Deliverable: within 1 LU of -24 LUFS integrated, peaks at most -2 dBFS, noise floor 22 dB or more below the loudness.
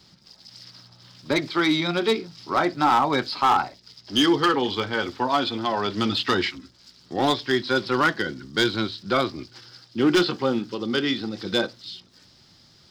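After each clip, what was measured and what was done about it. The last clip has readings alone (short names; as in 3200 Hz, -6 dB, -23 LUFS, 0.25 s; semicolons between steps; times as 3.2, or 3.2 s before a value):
clipped 0.7%; flat tops at -13.0 dBFS; loudness -23.5 LUFS; peak -13.0 dBFS; loudness target -24.0 LUFS
-> clip repair -13 dBFS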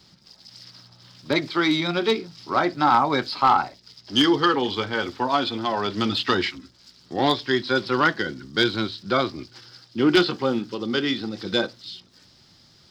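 clipped 0.0%; loudness -23.0 LUFS; peak -4.0 dBFS; loudness target -24.0 LUFS
-> gain -1 dB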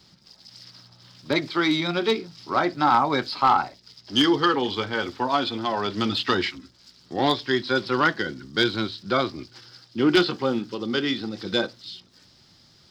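loudness -24.0 LUFS; peak -5.0 dBFS; noise floor -56 dBFS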